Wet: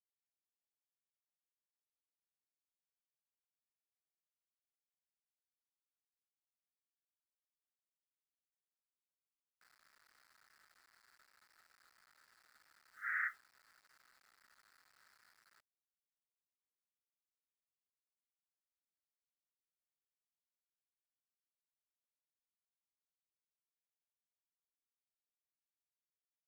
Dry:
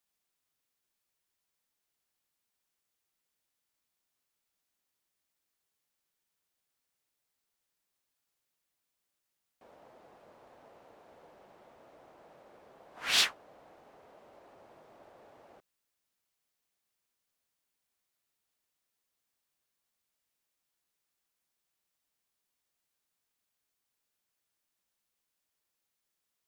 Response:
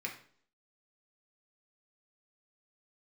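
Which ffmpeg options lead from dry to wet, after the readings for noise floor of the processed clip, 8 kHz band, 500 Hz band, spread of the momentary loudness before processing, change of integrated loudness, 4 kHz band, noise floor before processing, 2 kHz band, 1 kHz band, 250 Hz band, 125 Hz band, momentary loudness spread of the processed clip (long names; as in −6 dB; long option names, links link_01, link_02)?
below −85 dBFS, below −25 dB, below −30 dB, 9 LU, −11.5 dB, −36.5 dB, −85 dBFS, −4.0 dB, −7.0 dB, below −25 dB, below −25 dB, 6 LU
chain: -filter_complex "[0:a]acompressor=mode=upward:threshold=-55dB:ratio=2.5,asuperpass=centerf=1600:order=12:qfactor=2.1,asplit=2[link_01][link_02];[1:a]atrim=start_sample=2205,atrim=end_sample=3528[link_03];[link_02][link_03]afir=irnorm=-1:irlink=0,volume=-13dB[link_04];[link_01][link_04]amix=inputs=2:normalize=0,acrusher=bits=10:mix=0:aa=0.000001,volume=-1dB"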